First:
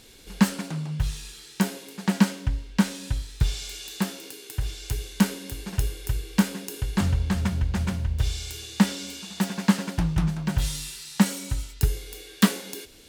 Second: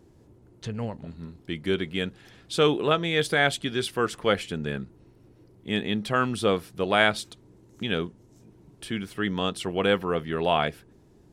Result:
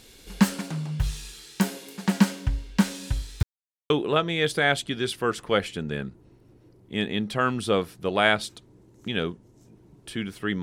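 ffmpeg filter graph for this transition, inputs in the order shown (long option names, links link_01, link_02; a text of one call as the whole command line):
ffmpeg -i cue0.wav -i cue1.wav -filter_complex "[0:a]apad=whole_dur=10.62,atrim=end=10.62,asplit=2[link_01][link_02];[link_01]atrim=end=3.43,asetpts=PTS-STARTPTS,afade=type=out:start_time=3.426:duration=0.004:curve=hsin[link_03];[link_02]atrim=start=3.43:end=3.9,asetpts=PTS-STARTPTS,volume=0[link_04];[1:a]atrim=start=2.65:end=9.37,asetpts=PTS-STARTPTS,afade=type=in:duration=0.004:curve=hsin[link_05];[link_03][link_04][link_05]concat=n=3:v=0:a=1" out.wav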